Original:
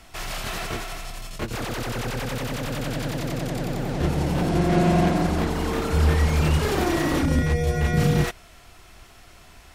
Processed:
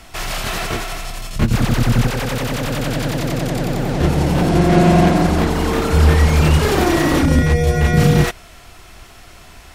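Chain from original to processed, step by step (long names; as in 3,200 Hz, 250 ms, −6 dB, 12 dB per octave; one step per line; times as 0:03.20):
0:01.36–0:02.07: low shelf with overshoot 280 Hz +8.5 dB, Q 1.5
level +7.5 dB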